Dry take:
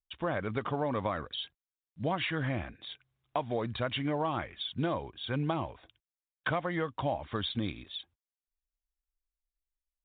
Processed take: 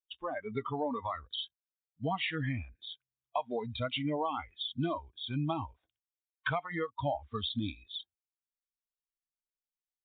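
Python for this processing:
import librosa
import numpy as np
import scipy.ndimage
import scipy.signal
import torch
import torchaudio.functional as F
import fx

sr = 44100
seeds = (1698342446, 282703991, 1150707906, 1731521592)

y = fx.noise_reduce_blind(x, sr, reduce_db=23)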